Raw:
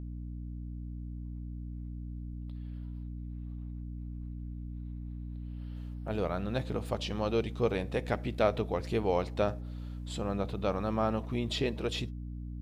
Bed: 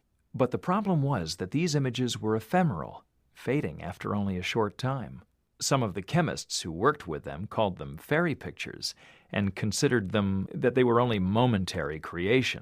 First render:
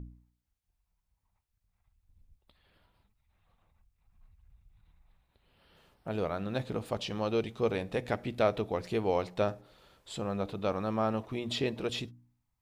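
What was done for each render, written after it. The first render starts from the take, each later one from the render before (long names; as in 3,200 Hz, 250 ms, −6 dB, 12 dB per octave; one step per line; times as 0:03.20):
hum removal 60 Hz, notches 5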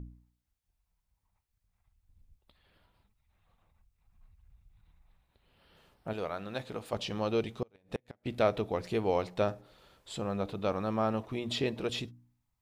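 0:06.13–0:06.93: low-shelf EQ 390 Hz −9 dB
0:07.57–0:08.26: gate with flip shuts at −22 dBFS, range −35 dB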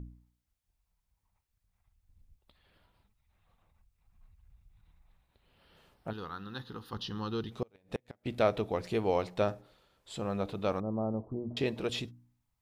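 0:06.10–0:07.52: phaser with its sweep stopped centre 2,300 Hz, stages 6
0:09.56–0:10.25: duck −8.5 dB, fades 0.31 s linear
0:10.80–0:11.57: Gaussian smoothing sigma 11 samples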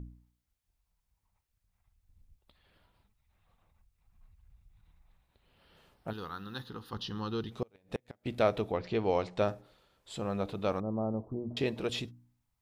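0:06.08–0:06.69: high-shelf EQ 7,900 Hz +10.5 dB
0:08.71–0:09.40: low-pass filter 4,000 Hz → 9,200 Hz 24 dB per octave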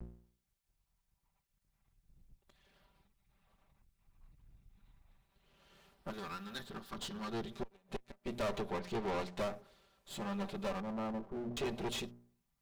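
lower of the sound and its delayed copy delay 5.1 ms
soft clipping −32 dBFS, distortion −8 dB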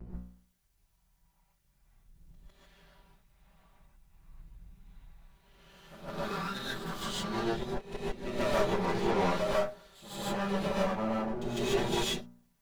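on a send: backwards echo 153 ms −11 dB
on the sum: reverb whose tail is shaped and stops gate 170 ms rising, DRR −8 dB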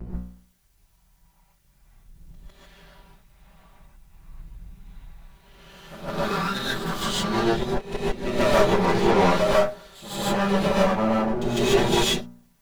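level +10 dB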